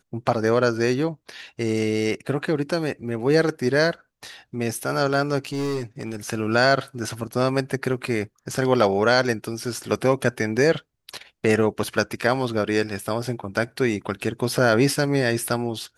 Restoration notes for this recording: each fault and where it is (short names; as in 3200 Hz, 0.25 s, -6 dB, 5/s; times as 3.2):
5.38–6.16 clipped -22.5 dBFS